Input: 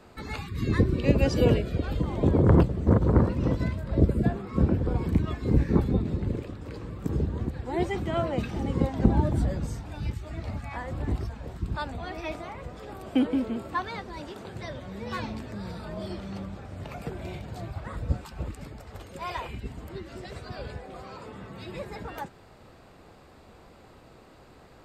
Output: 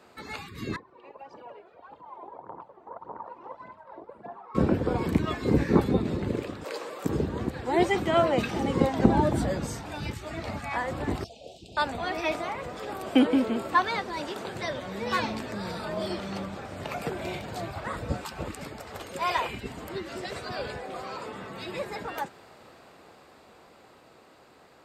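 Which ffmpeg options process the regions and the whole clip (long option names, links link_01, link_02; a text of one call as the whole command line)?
ffmpeg -i in.wav -filter_complex "[0:a]asettb=1/sr,asplit=3[link_01][link_02][link_03];[link_01]atrim=end=0.764[link_04];[link_02]atrim=start=0.76:end=4.55,asetpts=PTS-STARTPTS,afade=type=in:duration=0.004:curve=qsin,afade=type=out:start_time=3.786:duration=0.004:curve=qsin,acompressor=threshold=-22dB:ratio=3:attack=3.2:release=140:knee=1:detection=peak,aphaser=in_gain=1:out_gain=1:delay=3:decay=0.58:speed=1.7:type=triangular,bandpass=frequency=910:width_type=q:width=5.5[link_05];[link_03]atrim=start=4.546[link_06];[link_04][link_05]acrossfade=duration=0.004:curve1=hsin:curve2=qsin[link_07];[link_07][link_06]acrossfade=duration=0.004:curve1=qsin:curve2=hsin,asettb=1/sr,asplit=3[link_08][link_09][link_10];[link_08]atrim=end=6.644[link_11];[link_09]atrim=start=6.64:end=7.05,asetpts=PTS-STARTPTS,afade=type=in:duration=0.004:curve=qsin,afade=type=out:start_time=0.406:duration=0.004:curve=qsin,highpass=frequency=550:width_type=q:width=1.7,highshelf=frequency=4100:gain=8[link_12];[link_10]atrim=start=7.046[link_13];[link_11][link_12]acrossfade=duration=0.004:curve1=hsin:curve2=qsin[link_14];[link_14][link_13]acrossfade=duration=0.004:curve1=qsin:curve2=hsin,asettb=1/sr,asplit=3[link_15][link_16][link_17];[link_15]atrim=end=11.244[link_18];[link_16]atrim=start=11.24:end=11.77,asetpts=PTS-STARTPTS,afade=type=in:duration=0.004:curve=qsin,afade=type=out:start_time=0.526:duration=0.004:curve=qsin,asuperstop=centerf=1400:order=12:qfactor=0.71,acrossover=split=550 7600:gain=0.158 1 0.158[link_19][link_20][link_21];[link_19][link_20][link_21]amix=inputs=3:normalize=0[link_22];[link_17]atrim=start=11.766[link_23];[link_18][link_22]acrossfade=duration=0.004:curve1=hsin:curve2=qsin[link_24];[link_24][link_23]acrossfade=duration=0.004:curve1=qsin:curve2=hsin,highpass=frequency=390:poles=1,dynaudnorm=framelen=550:gausssize=13:maxgain=8dB" out.wav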